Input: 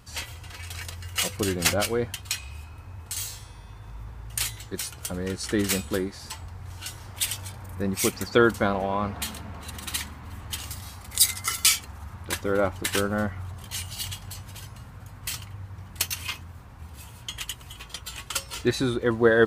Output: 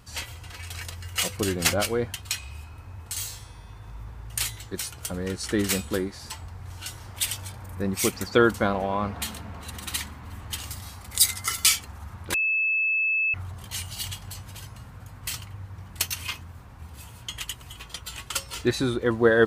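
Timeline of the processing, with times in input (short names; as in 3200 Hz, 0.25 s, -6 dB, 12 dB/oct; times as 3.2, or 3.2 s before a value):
12.34–13.34 bleep 2610 Hz -21 dBFS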